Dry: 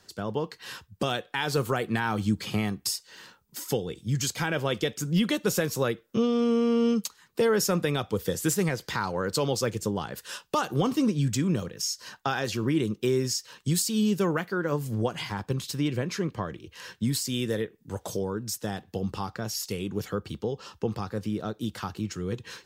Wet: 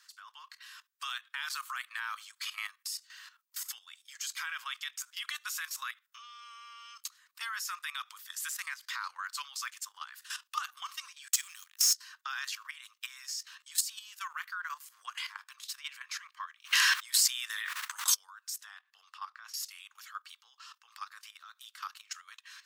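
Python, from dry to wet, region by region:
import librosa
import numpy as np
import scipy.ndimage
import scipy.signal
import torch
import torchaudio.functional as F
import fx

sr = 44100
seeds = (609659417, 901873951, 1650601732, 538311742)

y = fx.chain(x, sr, fx.differentiator(),
    fx.leveller(passes=3), at=(11.28, 11.94))
y = fx.chain(y, sr, fx.high_shelf(hz=4700.0, db=-4.0),
    fx.doubler(ms=14.0, db=-2), at=(13.28, 13.72))
y = fx.low_shelf(y, sr, hz=380.0, db=5.5, at=(16.64, 18.14), fade=0.02)
y = fx.dmg_noise_colour(y, sr, seeds[0], colour='brown', level_db=-49.0, at=(16.64, 18.14), fade=0.02)
y = fx.env_flatten(y, sr, amount_pct=100, at=(16.64, 18.14), fade=0.02)
y = fx.chain(y, sr, fx.lowpass(hz=2300.0, slope=6),
    fx.peak_eq(hz=250.0, db=7.0, octaves=0.88),
    fx.band_squash(depth_pct=70), at=(18.64, 19.54))
y = scipy.signal.sosfilt(scipy.signal.cheby1(5, 1.0, 1100.0, 'highpass', fs=sr, output='sos'), y)
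y = fx.level_steps(y, sr, step_db=13)
y = y * librosa.db_to_amplitude(1.5)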